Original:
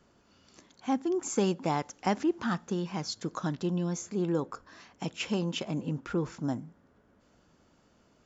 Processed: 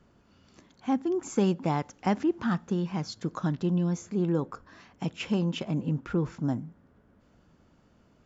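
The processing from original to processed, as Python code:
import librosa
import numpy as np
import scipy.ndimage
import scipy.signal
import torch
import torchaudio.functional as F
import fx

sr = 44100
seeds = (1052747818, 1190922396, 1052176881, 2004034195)

y = fx.bass_treble(x, sr, bass_db=6, treble_db=-6)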